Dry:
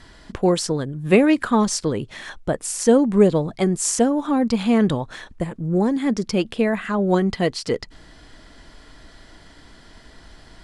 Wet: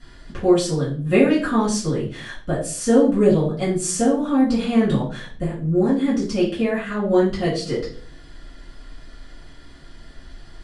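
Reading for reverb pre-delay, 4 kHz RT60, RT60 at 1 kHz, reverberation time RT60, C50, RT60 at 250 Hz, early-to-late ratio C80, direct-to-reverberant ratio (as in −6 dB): 4 ms, 0.35 s, 0.40 s, 0.45 s, 7.0 dB, 0.65 s, 12.0 dB, −10.5 dB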